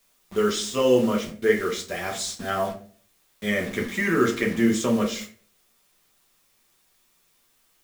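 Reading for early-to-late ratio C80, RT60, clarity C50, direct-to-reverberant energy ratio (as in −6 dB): 15.0 dB, 0.45 s, 11.0 dB, −0.5 dB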